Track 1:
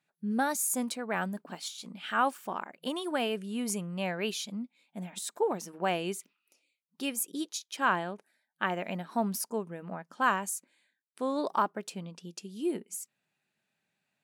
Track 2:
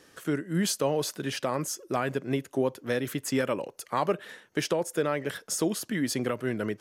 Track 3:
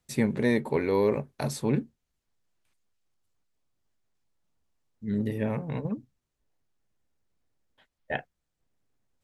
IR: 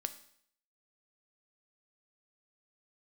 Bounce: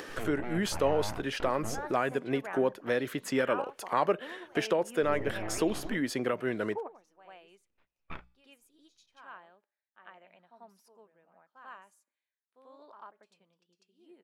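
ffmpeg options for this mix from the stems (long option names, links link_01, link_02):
-filter_complex "[0:a]acrossover=split=410 4700:gain=0.224 1 0.2[link_01][link_02][link_03];[link_01][link_02][link_03]amix=inputs=3:normalize=0,adelay=1350,volume=-7dB,asplit=3[link_04][link_05][link_06];[link_05]volume=-21.5dB[link_07];[link_06]volume=-14.5dB[link_08];[1:a]bass=frequency=250:gain=-8,treble=frequency=4000:gain=-10,acompressor=mode=upward:threshold=-32dB:ratio=2.5,volume=0.5dB,asplit=2[link_09][link_10];[2:a]aeval=exprs='abs(val(0))':channel_layout=same,bandreject=frequency=60:width_type=h:width=6,bandreject=frequency=120:width_type=h:width=6,bandreject=frequency=180:width_type=h:width=6,volume=-6dB,asplit=2[link_11][link_12];[link_12]volume=-23.5dB[link_13];[link_10]apad=whole_len=687420[link_14];[link_04][link_14]sidechaingate=range=-33dB:threshold=-49dB:ratio=16:detection=peak[link_15];[link_15][link_11]amix=inputs=2:normalize=0,lowpass=frequency=3000:width=0.5412,lowpass=frequency=3000:width=1.3066,alimiter=level_in=2dB:limit=-24dB:level=0:latency=1:release=75,volume=-2dB,volume=0dB[link_16];[3:a]atrim=start_sample=2205[link_17];[link_07][link_13]amix=inputs=2:normalize=0[link_18];[link_18][link_17]afir=irnorm=-1:irlink=0[link_19];[link_08]aecho=0:1:92:1[link_20];[link_09][link_16][link_19][link_20]amix=inputs=4:normalize=0"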